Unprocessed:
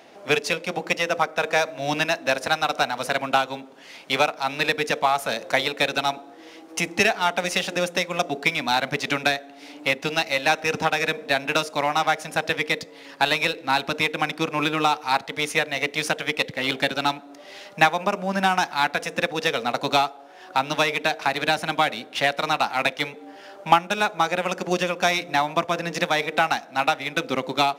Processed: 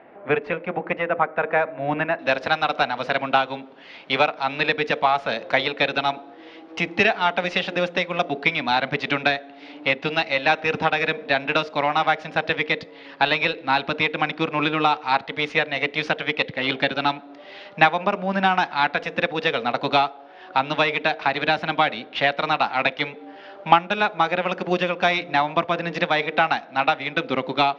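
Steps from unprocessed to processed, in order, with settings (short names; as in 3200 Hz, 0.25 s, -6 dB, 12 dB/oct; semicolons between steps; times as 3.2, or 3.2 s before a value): LPF 2100 Hz 24 dB/oct, from 2.19 s 3900 Hz; gain +1.5 dB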